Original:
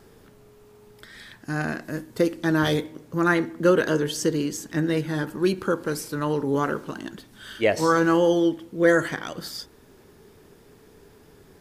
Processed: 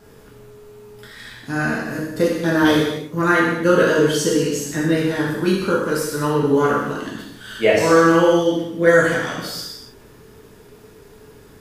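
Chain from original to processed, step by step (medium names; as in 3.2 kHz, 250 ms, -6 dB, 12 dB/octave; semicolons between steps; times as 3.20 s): gated-style reverb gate 320 ms falling, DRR -6 dB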